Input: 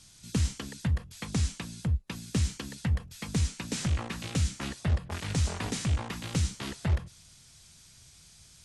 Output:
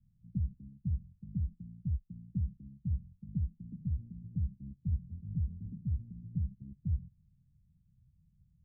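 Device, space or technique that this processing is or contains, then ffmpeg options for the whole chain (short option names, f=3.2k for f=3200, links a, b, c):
the neighbour's flat through the wall: -af "lowpass=f=180:w=0.5412,lowpass=f=180:w=1.3066,equalizer=f=190:t=o:w=0.58:g=5,volume=-6dB"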